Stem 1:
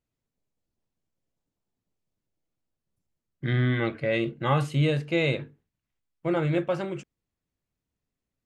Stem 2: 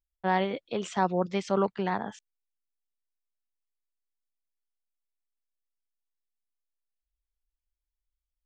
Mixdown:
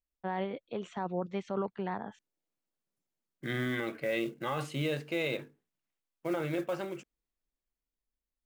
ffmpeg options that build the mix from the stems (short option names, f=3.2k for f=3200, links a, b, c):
-filter_complex "[0:a]highpass=230,dynaudnorm=f=440:g=9:m=14dB,acrusher=bits=6:mode=log:mix=0:aa=0.000001,volume=-13.5dB[a];[1:a]aemphasis=mode=reproduction:type=75kf,bandreject=f=5k:w=5.9,volume=-5.5dB[b];[a][b]amix=inputs=2:normalize=0,alimiter=limit=-23.5dB:level=0:latency=1:release=11"